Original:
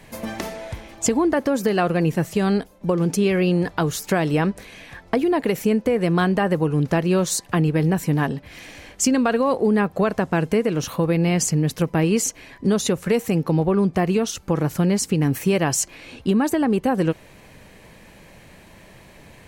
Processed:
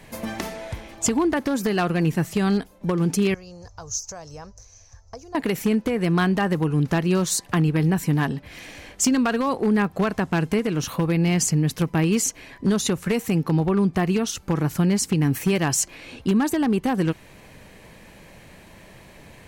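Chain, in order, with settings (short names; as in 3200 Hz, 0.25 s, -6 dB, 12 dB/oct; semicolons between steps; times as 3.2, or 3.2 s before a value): 3.34–5.35 EQ curve 100 Hz 0 dB, 160 Hz -23 dB, 330 Hz -28 dB, 520 Hz -16 dB, 1100 Hz -15 dB, 2000 Hz -25 dB, 3500 Hz -24 dB, 6200 Hz +10 dB, 8800 Hz -21 dB; wavefolder -12 dBFS; dynamic EQ 540 Hz, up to -7 dB, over -36 dBFS, Q 1.9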